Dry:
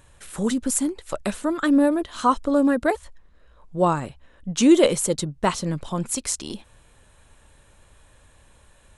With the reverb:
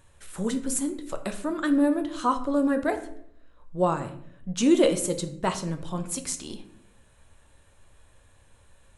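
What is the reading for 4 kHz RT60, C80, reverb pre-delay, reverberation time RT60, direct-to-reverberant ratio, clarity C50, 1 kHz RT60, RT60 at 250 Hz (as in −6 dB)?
0.40 s, 15.0 dB, 3 ms, 0.65 s, 6.5 dB, 12.0 dB, 0.55 s, 0.95 s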